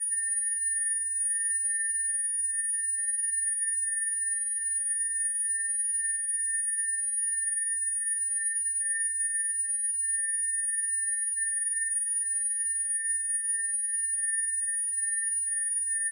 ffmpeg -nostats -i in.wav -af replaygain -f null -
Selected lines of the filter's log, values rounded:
track_gain = +19.6 dB
track_peak = 0.060